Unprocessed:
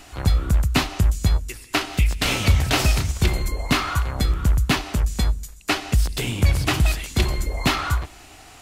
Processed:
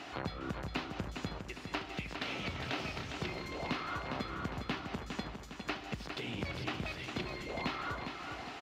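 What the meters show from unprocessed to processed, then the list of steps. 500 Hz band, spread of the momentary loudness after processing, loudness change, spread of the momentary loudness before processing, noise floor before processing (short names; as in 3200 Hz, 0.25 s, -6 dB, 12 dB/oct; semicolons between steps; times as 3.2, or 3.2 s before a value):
-11.5 dB, 4 LU, -17.5 dB, 6 LU, -45 dBFS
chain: HPF 190 Hz 12 dB/oct; high shelf 5000 Hz +8 dB; compressor 4:1, threshold -38 dBFS, peak gain reduction 19 dB; air absorption 250 m; feedback echo 0.407 s, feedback 50%, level -6.5 dB; gain +2 dB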